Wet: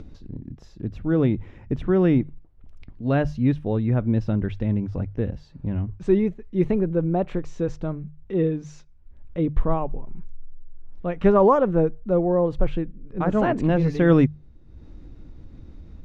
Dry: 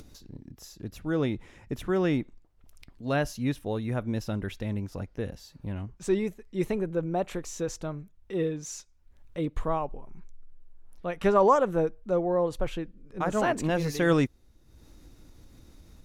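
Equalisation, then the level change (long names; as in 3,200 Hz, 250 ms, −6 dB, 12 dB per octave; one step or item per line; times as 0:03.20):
low-pass filter 3,100 Hz 12 dB per octave
low-shelf EQ 410 Hz +11.5 dB
mains-hum notches 50/100/150 Hz
0.0 dB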